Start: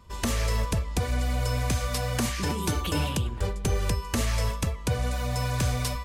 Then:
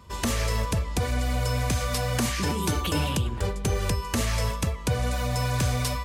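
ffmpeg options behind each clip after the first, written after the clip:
-filter_complex "[0:a]highpass=55,asplit=2[a][b];[b]alimiter=level_in=0.5dB:limit=-24dB:level=0:latency=1:release=127,volume=-0.5dB,volume=1dB[c];[a][c]amix=inputs=2:normalize=0,volume=-2dB"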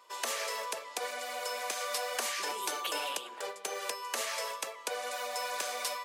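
-af "highpass=f=490:w=0.5412,highpass=f=490:w=1.3066,volume=-4dB"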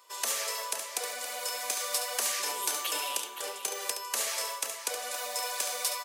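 -filter_complex "[0:a]highshelf=f=4.8k:g=12,asplit=2[a][b];[b]aecho=0:1:70|518|753:0.376|0.316|0.112[c];[a][c]amix=inputs=2:normalize=0,volume=-2.5dB"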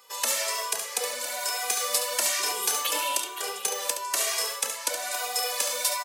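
-filter_complex "[0:a]asplit=2[a][b];[b]adelay=2,afreqshift=1.1[c];[a][c]amix=inputs=2:normalize=1,volume=8dB"

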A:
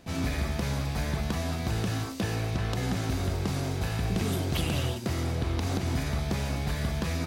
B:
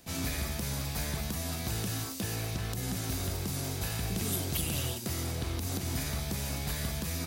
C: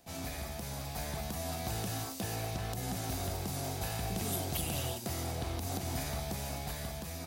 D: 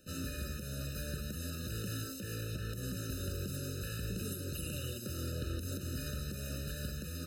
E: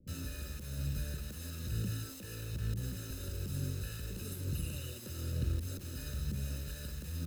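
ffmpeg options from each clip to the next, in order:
-filter_complex "[0:a]aemphasis=mode=production:type=75kf,acrossover=split=380|7600[a][b][c];[b]alimiter=limit=-21.5dB:level=0:latency=1:release=248[d];[a][d][c]amix=inputs=3:normalize=0,volume=-5.5dB"
-af "equalizer=f=730:w=2.1:g=9.5,dynaudnorm=f=250:g=9:m=4dB,volume=-7.5dB"
-af "alimiter=level_in=6.5dB:limit=-24dB:level=0:latency=1:release=283,volume=-6.5dB,afftfilt=real='re*eq(mod(floor(b*sr/1024/610),2),0)':imag='im*eq(mod(floor(b*sr/1024/610),2),0)':win_size=1024:overlap=0.75,volume=3dB"
-filter_complex "[0:a]acrossover=split=240|900[a][b][c];[a]aphaser=in_gain=1:out_gain=1:delay=2.3:decay=0.69:speed=1.1:type=triangular[d];[b]adynamicsmooth=sensitivity=6.5:basefreq=540[e];[c]acrusher=bits=7:mix=0:aa=0.000001[f];[d][e][f]amix=inputs=3:normalize=0,volume=-3.5dB"

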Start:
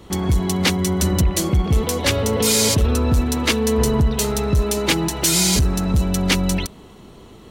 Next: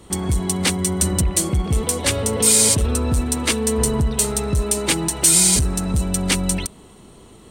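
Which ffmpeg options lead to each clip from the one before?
-af "equalizer=f=8.7k:t=o:w=0.39:g=14.5,volume=-2.5dB"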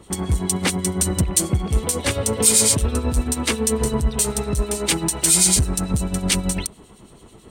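-filter_complex "[0:a]acrossover=split=2500[a][b];[a]aeval=exprs='val(0)*(1-0.7/2+0.7/2*cos(2*PI*9.1*n/s))':c=same[c];[b]aeval=exprs='val(0)*(1-0.7/2-0.7/2*cos(2*PI*9.1*n/s))':c=same[d];[c][d]amix=inputs=2:normalize=0,volume=2dB"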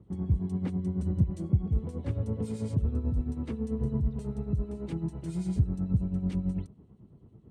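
-af "bandpass=f=120:t=q:w=1.3:csg=0,volume=-2dB"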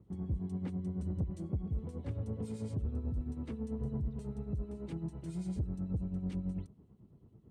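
-af "asoftclip=type=tanh:threshold=-22.5dB,volume=-5.5dB"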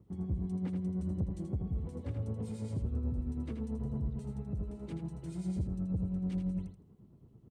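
-af "aecho=1:1:81|162|243:0.473|0.0757|0.0121"

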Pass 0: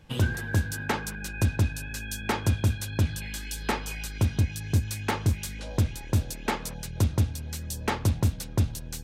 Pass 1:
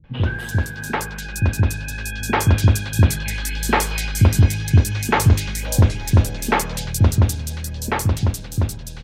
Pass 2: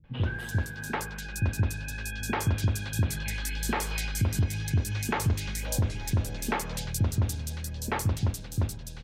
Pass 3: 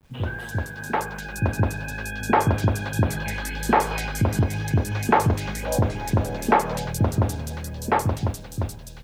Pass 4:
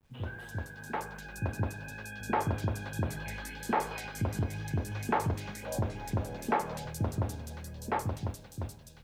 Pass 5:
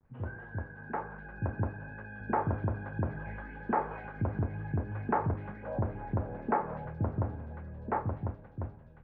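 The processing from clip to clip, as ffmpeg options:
-filter_complex "[0:a]bandreject=f=101.6:t=h:w=4,bandreject=f=203.2:t=h:w=4,bandreject=f=304.8:t=h:w=4,bandreject=f=406.4:t=h:w=4,bandreject=f=508:t=h:w=4,dynaudnorm=f=380:g=11:m=6.5dB,acrossover=split=290|3600[a][b][c];[b]adelay=40[d];[c]adelay=290[e];[a][d][e]amix=inputs=3:normalize=0,volume=5.5dB"
-af "alimiter=limit=-10dB:level=0:latency=1:release=128,volume=-7.5dB"
-filter_complex "[0:a]adynamicequalizer=threshold=0.00501:dfrequency=720:dqfactor=0.75:tfrequency=720:tqfactor=0.75:attack=5:release=100:ratio=0.375:range=4:mode=boostabove:tftype=bell,acrossover=split=110|1800[a][b][c];[b]dynaudnorm=f=130:g=17:m=7.5dB[d];[a][d][c]amix=inputs=3:normalize=0,acrusher=bits=9:mix=0:aa=0.000001"
-af "flanger=delay=9.1:depth=4.1:regen=-75:speed=0.52:shape=sinusoidal,volume=-6.5dB"
-af "lowpass=f=1.7k:w=0.5412,lowpass=f=1.7k:w=1.3066"

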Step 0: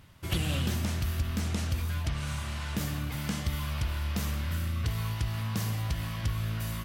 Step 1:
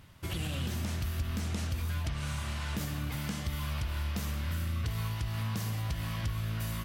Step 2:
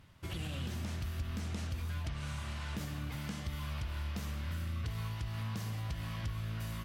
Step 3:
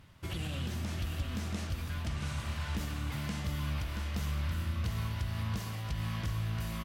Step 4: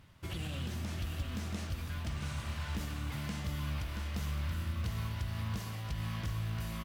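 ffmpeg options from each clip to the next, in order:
-af "alimiter=level_in=1.5dB:limit=-24dB:level=0:latency=1:release=198,volume=-1.5dB"
-af "highshelf=f=9.2k:g=-7.5,volume=-4.5dB"
-af "aecho=1:1:678:0.501,volume=2.5dB"
-af "acrusher=bits=8:mode=log:mix=0:aa=0.000001,volume=-2dB"

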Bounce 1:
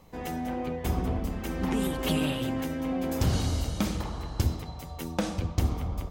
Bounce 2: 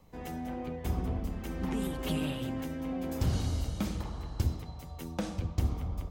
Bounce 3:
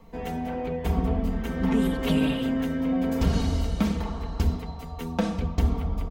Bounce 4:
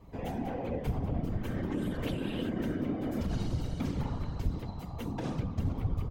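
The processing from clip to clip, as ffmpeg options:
-filter_complex "[0:a]lowshelf=f=220:g=4.5,acrossover=split=330|1900[a][b][c];[c]asoftclip=type=hard:threshold=-27.5dB[d];[a][b][d]amix=inputs=3:normalize=0,volume=-7dB"
-filter_complex "[0:a]bandreject=f=50:t=h:w=6,bandreject=f=100:t=h:w=6,bandreject=f=150:t=h:w=6,bandreject=f=200:t=h:w=6,bandreject=f=250:t=h:w=6,aecho=1:1:4.4:0.72,asplit=2[a][b];[b]adynamicsmooth=sensitivity=3:basefreq=4.9k,volume=3dB[c];[a][c]amix=inputs=2:normalize=0"
-af "alimiter=limit=-21dB:level=0:latency=1:release=97,lowshelf=f=180:g=5,afftfilt=real='hypot(re,im)*cos(2*PI*random(0))':imag='hypot(re,im)*sin(2*PI*random(1))':win_size=512:overlap=0.75"

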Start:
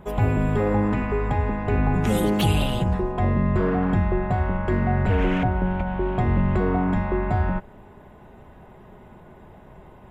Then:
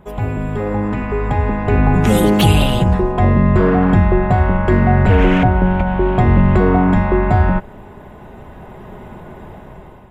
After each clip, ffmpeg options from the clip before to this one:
-af "dynaudnorm=f=500:g=5:m=14.5dB"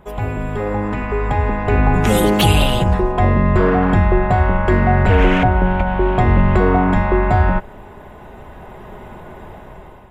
-af "equalizer=f=170:w=0.6:g=-5.5,volume=1.5dB"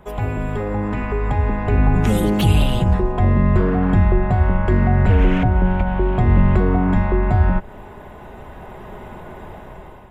-filter_complex "[0:a]acrossover=split=300[a][b];[b]acompressor=threshold=-27dB:ratio=2.5[c];[a][c]amix=inputs=2:normalize=0"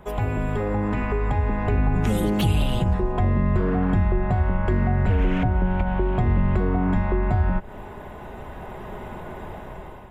-af "acompressor=threshold=-21dB:ratio=2"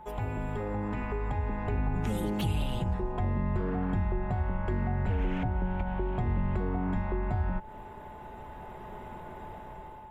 -af "aeval=exprs='val(0)+0.0141*sin(2*PI*870*n/s)':c=same,volume=-9dB"

